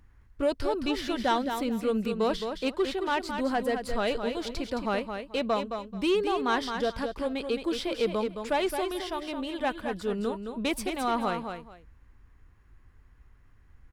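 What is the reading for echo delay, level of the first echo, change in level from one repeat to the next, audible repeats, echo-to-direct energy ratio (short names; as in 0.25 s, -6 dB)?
0.217 s, -7.0 dB, -13.5 dB, 2, -7.0 dB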